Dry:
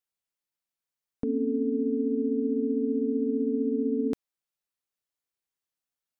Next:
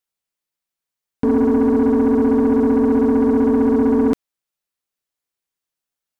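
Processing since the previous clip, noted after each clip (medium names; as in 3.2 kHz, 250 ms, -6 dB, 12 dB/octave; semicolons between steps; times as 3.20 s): waveshaping leveller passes 2; trim +8 dB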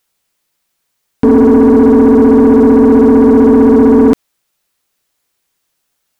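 loudness maximiser +19 dB; trim -1 dB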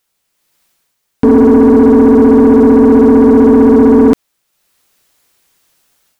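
level rider gain up to 11 dB; trim -1 dB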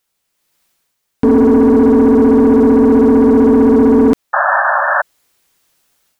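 painted sound noise, 4.33–5.02 s, 550–1800 Hz -10 dBFS; trim -3 dB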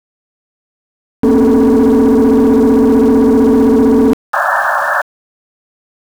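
small samples zeroed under -25 dBFS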